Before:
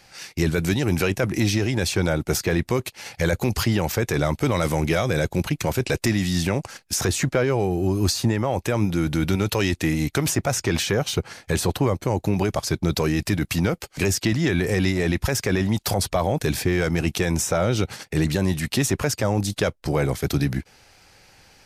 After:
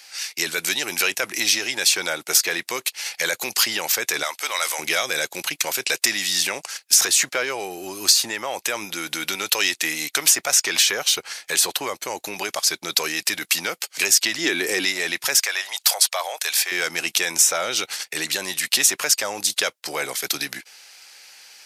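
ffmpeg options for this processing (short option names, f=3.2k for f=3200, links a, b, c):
-filter_complex "[0:a]asettb=1/sr,asplit=3[a][b][c];[a]atrim=end=4.234[d];[b]atrim=start=4.23:end=4.79,asetpts=PTS-STARTPTS,afade=t=in:d=0.004:c=qsin,afade=t=out:st=0.556:d=0.004:c=qsin,highpass=670[e];[c]atrim=start=4.786[f];[d][e]acrossfade=d=0.004:c1=hsin:c2=qsin[g];[g][f]acrossfade=d=0.004:c1=qsin:c2=hsin,asettb=1/sr,asplit=3[h][i][j];[h]atrim=end=14.384[k];[i]atrim=start=14.38:end=14.85,asetpts=PTS-STARTPTS,afade=t=in:d=0.004:c=qsin,afade=t=out:st=0.466:d=0.004:c=qsin,equalizer=f=320:w=1.5:g=10[l];[j]atrim=start=14.846[m];[k][l]acrossfade=d=0.004:c1=hsin:c2=qsin[n];[n][m]acrossfade=d=0.004:c1=qsin:c2=hsin,asettb=1/sr,asplit=3[o][p][q];[o]atrim=end=15.364[r];[p]atrim=start=15.36:end=16.72,asetpts=PTS-STARTPTS,afade=t=in:d=0.004:c=qsin,afade=t=out:st=1.356:d=0.004:c=qsin,highpass=f=580:w=0.5412,highpass=f=580:w=1.3066[s];[q]atrim=start=16.716[t];[r][s]acrossfade=d=0.004:c1=hsin:c2=qsin[u];[u][t]acrossfade=d=0.004:c1=qsin:c2=hsin,highpass=390,tiltshelf=f=1.2k:g=-9.5,volume=1.5dB"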